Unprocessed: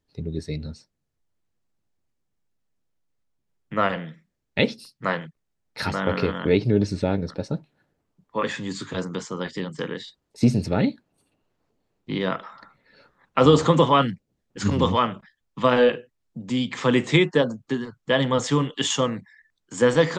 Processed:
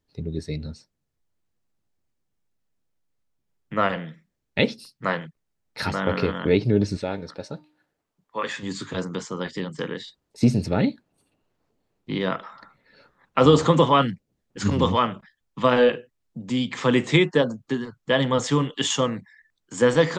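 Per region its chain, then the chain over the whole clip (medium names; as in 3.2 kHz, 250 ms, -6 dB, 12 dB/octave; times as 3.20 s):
6.97–8.63 s: bass shelf 370 Hz -11.5 dB + de-hum 303.6 Hz, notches 16
whole clip: none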